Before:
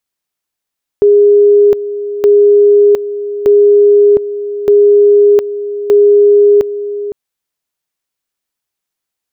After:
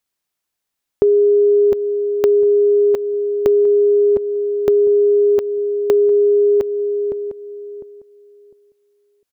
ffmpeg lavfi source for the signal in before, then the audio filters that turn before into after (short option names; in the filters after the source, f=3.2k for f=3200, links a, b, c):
-f lavfi -i "aevalsrc='pow(10,(-3-13*gte(mod(t,1.22),0.71))/20)*sin(2*PI*410*t)':d=6.1:s=44100"
-filter_complex "[0:a]acompressor=threshold=-11dB:ratio=6,asplit=2[a][b];[b]adelay=703,lowpass=f=830:p=1,volume=-10.5dB,asplit=2[c][d];[d]adelay=703,lowpass=f=830:p=1,volume=0.2,asplit=2[e][f];[f]adelay=703,lowpass=f=830:p=1,volume=0.2[g];[c][e][g]amix=inputs=3:normalize=0[h];[a][h]amix=inputs=2:normalize=0"